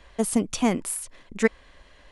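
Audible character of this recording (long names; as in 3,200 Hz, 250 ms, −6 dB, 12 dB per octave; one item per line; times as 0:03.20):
background noise floor −54 dBFS
spectral slope −4.0 dB per octave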